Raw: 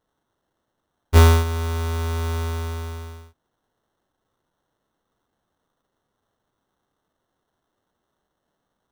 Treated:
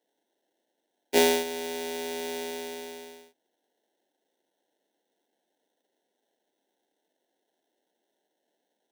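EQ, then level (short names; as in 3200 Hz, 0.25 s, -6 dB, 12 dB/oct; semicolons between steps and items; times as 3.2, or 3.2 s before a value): HPF 270 Hz 24 dB/oct; Butterworth band-stop 1200 Hz, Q 1.4; 0.0 dB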